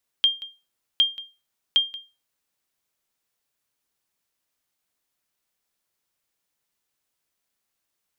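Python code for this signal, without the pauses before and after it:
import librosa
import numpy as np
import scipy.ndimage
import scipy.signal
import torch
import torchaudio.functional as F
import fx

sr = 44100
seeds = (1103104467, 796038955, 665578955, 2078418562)

y = fx.sonar_ping(sr, hz=3200.0, decay_s=0.28, every_s=0.76, pings=3, echo_s=0.18, echo_db=-18.5, level_db=-10.5)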